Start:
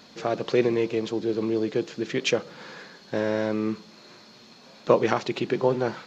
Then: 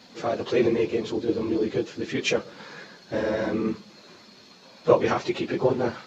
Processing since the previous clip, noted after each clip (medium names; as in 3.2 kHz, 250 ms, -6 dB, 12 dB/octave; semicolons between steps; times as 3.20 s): phase randomisation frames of 50 ms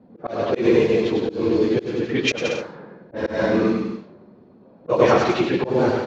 level-controlled noise filter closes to 430 Hz, open at -19.5 dBFS; bouncing-ball echo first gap 100 ms, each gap 0.75×, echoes 5; slow attack 156 ms; trim +5 dB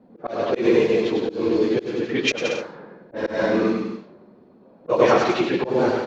peaking EQ 89 Hz -7.5 dB 1.8 oct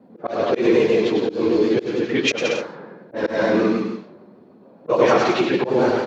vibrato 6.7 Hz 42 cents; in parallel at -1 dB: peak limiter -13.5 dBFS, peak gain reduction 9.5 dB; on the sum: high-pass 85 Hz; trim -2.5 dB